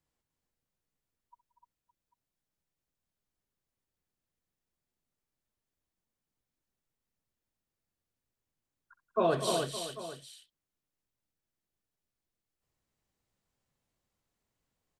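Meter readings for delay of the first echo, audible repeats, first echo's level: 66 ms, 6, -16.0 dB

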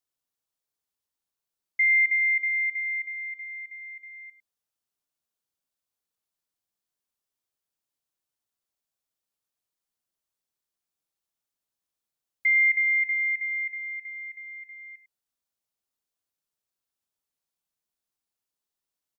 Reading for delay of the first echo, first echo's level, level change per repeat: 102 ms, -13.5 dB, no regular repeats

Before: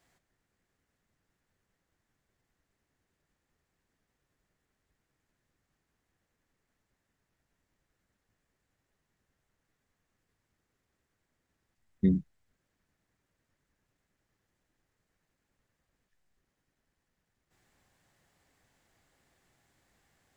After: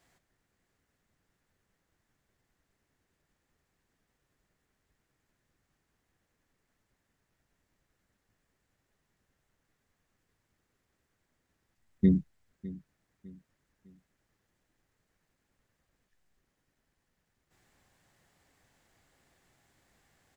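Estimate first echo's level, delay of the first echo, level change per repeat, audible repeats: -18.0 dB, 605 ms, -9.0 dB, 2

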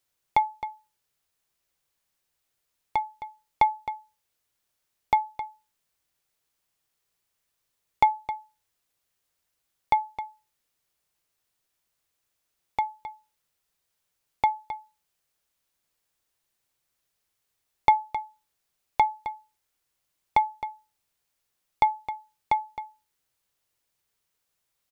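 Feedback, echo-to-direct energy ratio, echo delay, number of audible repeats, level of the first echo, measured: no regular repeats, -12.5 dB, 264 ms, 1, -12.5 dB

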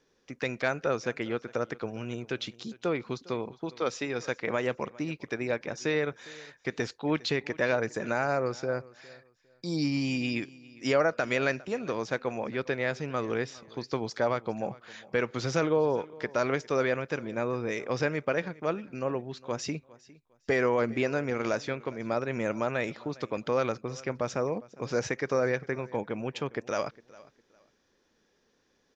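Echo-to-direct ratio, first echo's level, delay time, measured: -21.5 dB, -21.5 dB, 406 ms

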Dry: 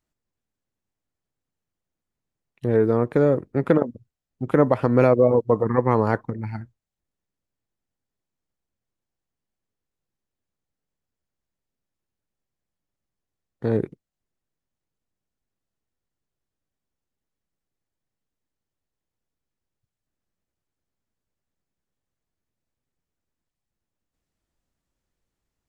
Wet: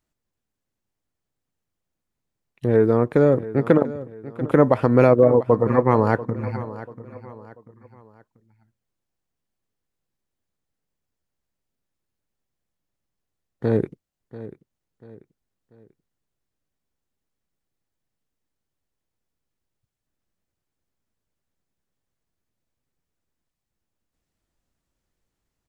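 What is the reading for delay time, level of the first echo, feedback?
689 ms, -16.0 dB, 38%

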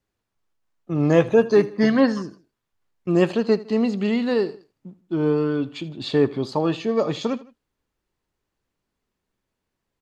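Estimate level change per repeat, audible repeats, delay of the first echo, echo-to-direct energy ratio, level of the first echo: -6.5 dB, 2, 79 ms, -18.0 dB, -19.0 dB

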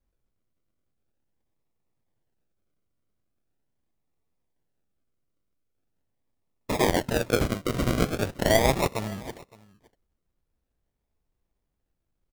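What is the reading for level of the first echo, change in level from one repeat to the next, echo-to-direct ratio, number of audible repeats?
-22.5 dB, no regular repeats, -22.5 dB, 1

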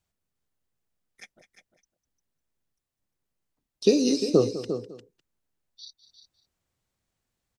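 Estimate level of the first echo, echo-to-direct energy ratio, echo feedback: -14.5 dB, -9.0 dB, no regular repeats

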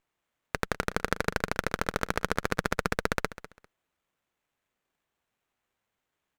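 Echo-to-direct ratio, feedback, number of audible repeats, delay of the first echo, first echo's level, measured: -15.5 dB, 21%, 2, 199 ms, -15.5 dB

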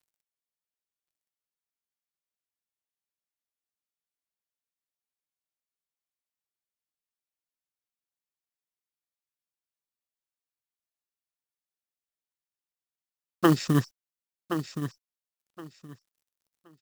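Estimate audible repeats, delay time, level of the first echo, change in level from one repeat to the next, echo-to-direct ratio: 2, 1071 ms, -9.5 dB, -14.0 dB, -9.5 dB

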